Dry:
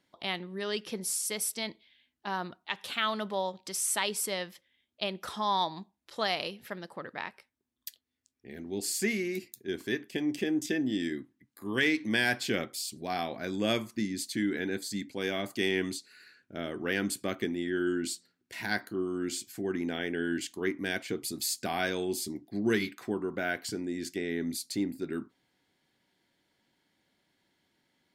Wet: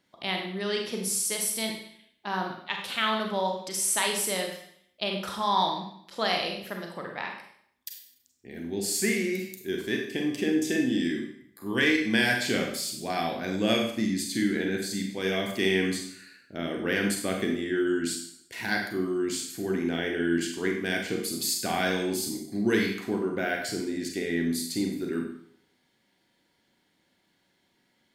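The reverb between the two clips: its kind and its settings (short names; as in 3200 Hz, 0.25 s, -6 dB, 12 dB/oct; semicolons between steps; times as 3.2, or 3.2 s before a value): Schroeder reverb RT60 0.64 s, combs from 32 ms, DRR 1.5 dB; gain +2 dB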